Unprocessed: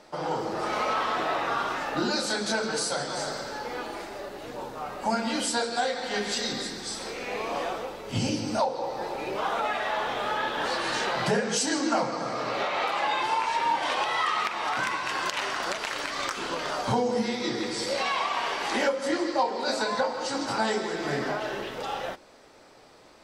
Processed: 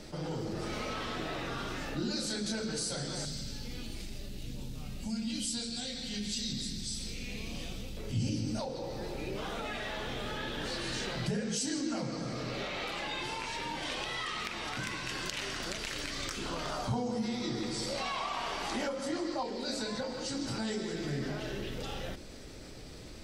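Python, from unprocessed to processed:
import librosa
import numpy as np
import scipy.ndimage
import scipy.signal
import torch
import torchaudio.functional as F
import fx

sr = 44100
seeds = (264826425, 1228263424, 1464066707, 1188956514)

y = fx.band_shelf(x, sr, hz=770.0, db=-11.5, octaves=2.9, at=(3.25, 7.97))
y = fx.band_shelf(y, sr, hz=920.0, db=9.0, octaves=1.3, at=(16.45, 19.43))
y = fx.tone_stack(y, sr, knobs='10-0-1')
y = fx.env_flatten(y, sr, amount_pct=50)
y = y * 10.0 ** (9.0 / 20.0)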